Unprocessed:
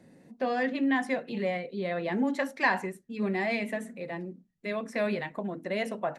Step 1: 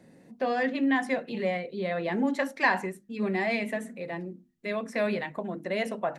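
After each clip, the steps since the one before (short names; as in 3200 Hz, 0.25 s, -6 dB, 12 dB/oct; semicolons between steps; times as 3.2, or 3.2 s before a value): notches 50/100/150/200/250/300/350 Hz; gain +1.5 dB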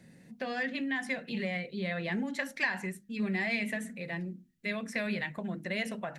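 compressor 6:1, threshold -27 dBFS, peak gain reduction 9 dB; band shelf 570 Hz -9 dB 2.5 oct; gain +2.5 dB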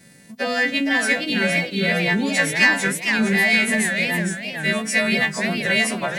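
frequency quantiser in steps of 2 st; sample leveller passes 1; warbling echo 0.46 s, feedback 34%, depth 211 cents, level -6 dB; gain +8.5 dB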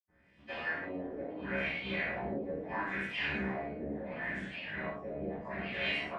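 cycle switcher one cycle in 3, muted; LFO low-pass sine 0.74 Hz 450–3100 Hz; reverb, pre-delay 77 ms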